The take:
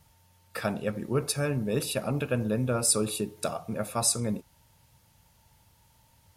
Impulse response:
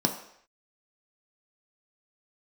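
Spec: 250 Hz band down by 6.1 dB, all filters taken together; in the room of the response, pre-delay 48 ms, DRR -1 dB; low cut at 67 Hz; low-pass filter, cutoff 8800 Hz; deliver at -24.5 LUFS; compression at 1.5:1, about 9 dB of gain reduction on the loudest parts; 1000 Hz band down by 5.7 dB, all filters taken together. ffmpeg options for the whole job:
-filter_complex "[0:a]highpass=67,lowpass=8.8k,equalizer=f=250:t=o:g=-7.5,equalizer=f=1k:t=o:g=-8,acompressor=threshold=-48dB:ratio=1.5,asplit=2[a][b];[1:a]atrim=start_sample=2205,adelay=48[c];[b][c]afir=irnorm=-1:irlink=0,volume=-8.5dB[d];[a][d]amix=inputs=2:normalize=0,volume=9dB"

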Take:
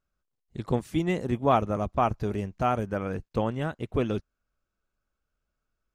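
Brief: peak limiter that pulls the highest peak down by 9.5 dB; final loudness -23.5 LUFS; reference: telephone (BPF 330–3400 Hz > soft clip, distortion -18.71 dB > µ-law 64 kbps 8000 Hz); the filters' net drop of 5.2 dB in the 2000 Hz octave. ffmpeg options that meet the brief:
-af "equalizer=f=2k:t=o:g=-6.5,alimiter=limit=-19.5dB:level=0:latency=1,highpass=330,lowpass=3.4k,asoftclip=threshold=-23dB,volume=13dB" -ar 8000 -c:a pcm_mulaw

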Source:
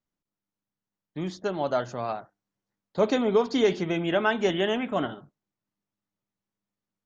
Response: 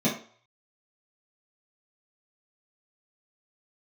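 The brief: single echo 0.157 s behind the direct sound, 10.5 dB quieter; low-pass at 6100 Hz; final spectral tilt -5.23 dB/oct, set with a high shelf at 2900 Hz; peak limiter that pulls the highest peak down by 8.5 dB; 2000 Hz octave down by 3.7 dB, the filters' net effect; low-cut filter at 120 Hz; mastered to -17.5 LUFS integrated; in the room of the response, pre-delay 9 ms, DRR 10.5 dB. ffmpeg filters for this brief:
-filter_complex "[0:a]highpass=120,lowpass=6.1k,equalizer=f=2k:t=o:g=-6.5,highshelf=f=2.9k:g=3.5,alimiter=limit=-19.5dB:level=0:latency=1,aecho=1:1:157:0.299,asplit=2[a][b];[1:a]atrim=start_sample=2205,adelay=9[c];[b][c]afir=irnorm=-1:irlink=0,volume=-22dB[d];[a][d]amix=inputs=2:normalize=0,volume=10dB"

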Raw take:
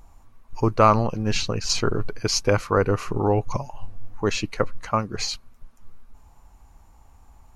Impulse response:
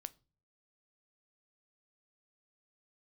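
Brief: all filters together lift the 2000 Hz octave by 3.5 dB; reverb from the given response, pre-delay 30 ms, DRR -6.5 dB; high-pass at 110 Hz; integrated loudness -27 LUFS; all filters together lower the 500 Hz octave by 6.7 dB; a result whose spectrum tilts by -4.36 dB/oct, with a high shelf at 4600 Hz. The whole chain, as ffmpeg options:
-filter_complex "[0:a]highpass=110,equalizer=f=500:t=o:g=-8.5,equalizer=f=2k:t=o:g=7,highshelf=f=4.6k:g=-7,asplit=2[a][b];[1:a]atrim=start_sample=2205,adelay=30[c];[b][c]afir=irnorm=-1:irlink=0,volume=11dB[d];[a][d]amix=inputs=2:normalize=0,volume=-8.5dB"

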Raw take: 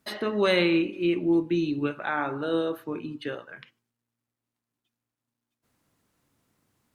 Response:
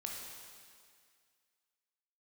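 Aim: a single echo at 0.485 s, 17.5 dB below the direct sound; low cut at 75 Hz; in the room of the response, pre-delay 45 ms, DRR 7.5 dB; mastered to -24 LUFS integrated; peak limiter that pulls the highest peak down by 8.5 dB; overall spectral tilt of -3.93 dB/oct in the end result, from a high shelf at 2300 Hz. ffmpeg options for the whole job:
-filter_complex "[0:a]highpass=75,highshelf=f=2.3k:g=3.5,alimiter=limit=-17.5dB:level=0:latency=1,aecho=1:1:485:0.133,asplit=2[a][b];[1:a]atrim=start_sample=2205,adelay=45[c];[b][c]afir=irnorm=-1:irlink=0,volume=-7dB[d];[a][d]amix=inputs=2:normalize=0,volume=3.5dB"

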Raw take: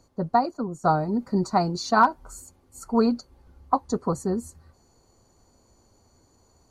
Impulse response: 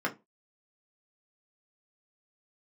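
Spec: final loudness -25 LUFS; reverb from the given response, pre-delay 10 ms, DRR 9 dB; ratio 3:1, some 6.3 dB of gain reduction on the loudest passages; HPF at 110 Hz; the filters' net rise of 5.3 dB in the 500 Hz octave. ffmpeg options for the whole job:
-filter_complex "[0:a]highpass=110,equalizer=f=500:t=o:g=7,acompressor=threshold=-20dB:ratio=3,asplit=2[a][b];[1:a]atrim=start_sample=2205,adelay=10[c];[b][c]afir=irnorm=-1:irlink=0,volume=-17.5dB[d];[a][d]amix=inputs=2:normalize=0,volume=1dB"

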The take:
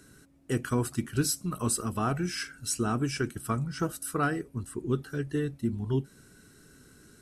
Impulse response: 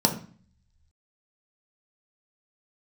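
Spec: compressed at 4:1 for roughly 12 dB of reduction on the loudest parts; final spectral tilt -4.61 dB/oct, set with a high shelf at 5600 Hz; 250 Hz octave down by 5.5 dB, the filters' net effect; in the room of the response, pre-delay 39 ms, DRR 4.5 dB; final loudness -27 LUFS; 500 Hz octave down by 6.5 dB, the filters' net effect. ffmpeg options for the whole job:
-filter_complex "[0:a]equalizer=f=250:t=o:g=-5.5,equalizer=f=500:t=o:g=-6.5,highshelf=f=5.6k:g=6,acompressor=threshold=-36dB:ratio=4,asplit=2[a][b];[1:a]atrim=start_sample=2205,adelay=39[c];[b][c]afir=irnorm=-1:irlink=0,volume=-17.5dB[d];[a][d]amix=inputs=2:normalize=0,volume=8.5dB"

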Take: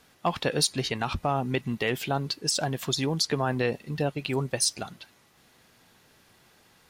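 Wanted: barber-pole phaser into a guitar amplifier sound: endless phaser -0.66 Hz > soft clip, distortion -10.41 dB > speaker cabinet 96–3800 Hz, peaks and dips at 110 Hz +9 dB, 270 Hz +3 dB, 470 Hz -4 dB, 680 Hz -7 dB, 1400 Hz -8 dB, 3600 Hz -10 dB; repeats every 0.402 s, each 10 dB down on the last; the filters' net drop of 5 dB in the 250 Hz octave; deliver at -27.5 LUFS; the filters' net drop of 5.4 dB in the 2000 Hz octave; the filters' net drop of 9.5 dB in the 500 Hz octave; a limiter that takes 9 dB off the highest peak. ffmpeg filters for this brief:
-filter_complex "[0:a]equalizer=f=250:t=o:g=-7.5,equalizer=f=500:t=o:g=-5,equalizer=f=2k:t=o:g=-3.5,alimiter=limit=-21.5dB:level=0:latency=1,aecho=1:1:402|804|1206|1608:0.316|0.101|0.0324|0.0104,asplit=2[a][b];[b]afreqshift=-0.66[c];[a][c]amix=inputs=2:normalize=1,asoftclip=threshold=-34dB,highpass=96,equalizer=f=110:t=q:w=4:g=9,equalizer=f=270:t=q:w=4:g=3,equalizer=f=470:t=q:w=4:g=-4,equalizer=f=680:t=q:w=4:g=-7,equalizer=f=1.4k:t=q:w=4:g=-8,equalizer=f=3.6k:t=q:w=4:g=-10,lowpass=f=3.8k:w=0.5412,lowpass=f=3.8k:w=1.3066,volume=14dB"

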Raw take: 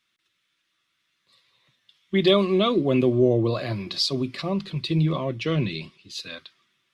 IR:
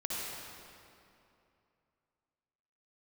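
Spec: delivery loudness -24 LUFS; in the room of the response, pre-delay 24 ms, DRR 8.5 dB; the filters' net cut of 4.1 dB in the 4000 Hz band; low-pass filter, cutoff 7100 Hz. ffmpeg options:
-filter_complex "[0:a]lowpass=7.1k,equalizer=f=4k:t=o:g=-4.5,asplit=2[a][b];[1:a]atrim=start_sample=2205,adelay=24[c];[b][c]afir=irnorm=-1:irlink=0,volume=-13dB[d];[a][d]amix=inputs=2:normalize=0,volume=-1dB"

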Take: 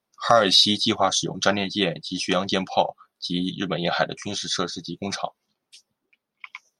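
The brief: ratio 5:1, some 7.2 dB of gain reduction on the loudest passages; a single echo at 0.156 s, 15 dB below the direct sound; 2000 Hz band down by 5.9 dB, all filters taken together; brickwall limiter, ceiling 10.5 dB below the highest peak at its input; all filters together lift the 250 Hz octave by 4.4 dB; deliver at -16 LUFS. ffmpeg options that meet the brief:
-af "equalizer=f=250:t=o:g=6,equalizer=f=2k:t=o:g=-8.5,acompressor=threshold=-21dB:ratio=5,alimiter=limit=-17dB:level=0:latency=1,aecho=1:1:156:0.178,volume=12.5dB"

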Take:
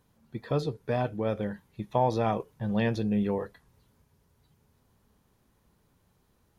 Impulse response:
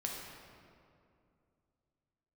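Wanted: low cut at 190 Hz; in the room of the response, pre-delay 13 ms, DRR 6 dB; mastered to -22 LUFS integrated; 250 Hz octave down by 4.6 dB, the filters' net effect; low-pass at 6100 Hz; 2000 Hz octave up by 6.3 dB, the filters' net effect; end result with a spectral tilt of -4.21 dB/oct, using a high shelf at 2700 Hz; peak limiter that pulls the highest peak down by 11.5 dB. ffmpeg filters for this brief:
-filter_complex "[0:a]highpass=190,lowpass=6.1k,equalizer=f=250:t=o:g=-3.5,equalizer=f=2k:t=o:g=5,highshelf=f=2.7k:g=7,alimiter=limit=-23.5dB:level=0:latency=1,asplit=2[a][b];[1:a]atrim=start_sample=2205,adelay=13[c];[b][c]afir=irnorm=-1:irlink=0,volume=-7.5dB[d];[a][d]amix=inputs=2:normalize=0,volume=13dB"

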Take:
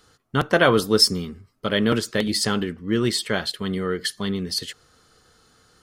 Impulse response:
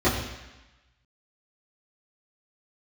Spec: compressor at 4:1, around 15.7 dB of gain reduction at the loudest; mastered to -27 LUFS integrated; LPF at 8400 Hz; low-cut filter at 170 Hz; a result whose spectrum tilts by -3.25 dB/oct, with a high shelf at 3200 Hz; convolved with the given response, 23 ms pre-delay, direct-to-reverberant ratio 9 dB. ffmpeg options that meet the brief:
-filter_complex "[0:a]highpass=170,lowpass=8.4k,highshelf=f=3.2k:g=9,acompressor=threshold=-24dB:ratio=4,asplit=2[a][b];[1:a]atrim=start_sample=2205,adelay=23[c];[b][c]afir=irnorm=-1:irlink=0,volume=-26dB[d];[a][d]amix=inputs=2:normalize=0"

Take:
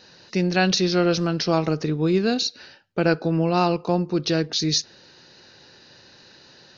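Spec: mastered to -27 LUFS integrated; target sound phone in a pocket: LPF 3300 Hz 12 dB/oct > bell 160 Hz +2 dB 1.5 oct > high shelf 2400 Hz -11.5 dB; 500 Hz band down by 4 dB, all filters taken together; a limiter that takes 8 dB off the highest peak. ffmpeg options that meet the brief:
-af "equalizer=f=500:t=o:g=-5.5,alimiter=limit=-16.5dB:level=0:latency=1,lowpass=3.3k,equalizer=f=160:t=o:w=1.5:g=2,highshelf=f=2.4k:g=-11.5,volume=-0.5dB"

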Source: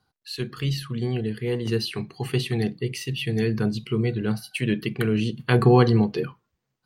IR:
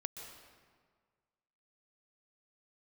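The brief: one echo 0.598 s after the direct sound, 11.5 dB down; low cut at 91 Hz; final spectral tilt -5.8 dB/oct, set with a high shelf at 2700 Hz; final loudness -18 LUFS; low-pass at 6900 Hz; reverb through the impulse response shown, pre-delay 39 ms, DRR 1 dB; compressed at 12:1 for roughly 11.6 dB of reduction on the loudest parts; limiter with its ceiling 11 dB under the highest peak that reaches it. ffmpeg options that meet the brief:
-filter_complex "[0:a]highpass=91,lowpass=6.9k,highshelf=f=2.7k:g=-6,acompressor=threshold=-23dB:ratio=12,alimiter=limit=-22.5dB:level=0:latency=1,aecho=1:1:598:0.266,asplit=2[a][b];[1:a]atrim=start_sample=2205,adelay=39[c];[b][c]afir=irnorm=-1:irlink=0,volume=0.5dB[d];[a][d]amix=inputs=2:normalize=0,volume=12.5dB"

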